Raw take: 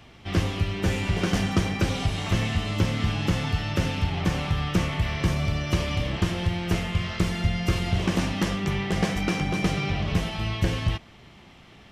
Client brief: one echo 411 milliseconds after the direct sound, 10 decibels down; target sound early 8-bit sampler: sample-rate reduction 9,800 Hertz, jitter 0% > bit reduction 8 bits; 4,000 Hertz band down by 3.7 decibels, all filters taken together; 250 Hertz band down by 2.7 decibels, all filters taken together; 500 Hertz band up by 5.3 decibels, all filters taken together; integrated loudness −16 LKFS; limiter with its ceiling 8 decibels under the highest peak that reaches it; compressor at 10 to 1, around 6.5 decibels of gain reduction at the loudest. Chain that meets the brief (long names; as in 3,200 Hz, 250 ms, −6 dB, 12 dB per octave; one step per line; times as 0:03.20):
parametric band 250 Hz −7 dB
parametric band 500 Hz +9 dB
parametric band 4,000 Hz −5.5 dB
downward compressor 10 to 1, threshold −25 dBFS
brickwall limiter −21.5 dBFS
single-tap delay 411 ms −10 dB
sample-rate reduction 9,800 Hz, jitter 0%
bit reduction 8 bits
level +15.5 dB